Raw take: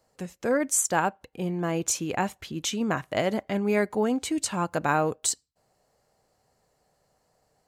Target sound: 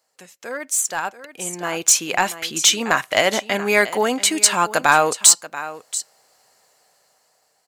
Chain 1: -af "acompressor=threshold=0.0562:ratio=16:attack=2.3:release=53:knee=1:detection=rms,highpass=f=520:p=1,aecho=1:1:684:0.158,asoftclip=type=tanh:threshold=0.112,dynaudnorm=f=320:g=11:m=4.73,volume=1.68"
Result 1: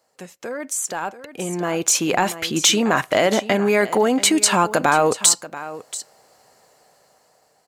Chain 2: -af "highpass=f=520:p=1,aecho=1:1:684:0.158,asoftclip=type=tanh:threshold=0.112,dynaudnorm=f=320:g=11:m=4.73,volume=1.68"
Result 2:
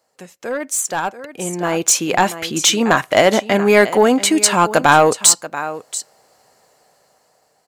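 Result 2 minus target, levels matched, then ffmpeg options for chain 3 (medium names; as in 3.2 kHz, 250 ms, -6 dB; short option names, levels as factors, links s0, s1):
500 Hz band +5.0 dB
-af "highpass=f=1800:p=1,aecho=1:1:684:0.158,asoftclip=type=tanh:threshold=0.112,dynaudnorm=f=320:g=11:m=4.73,volume=1.68"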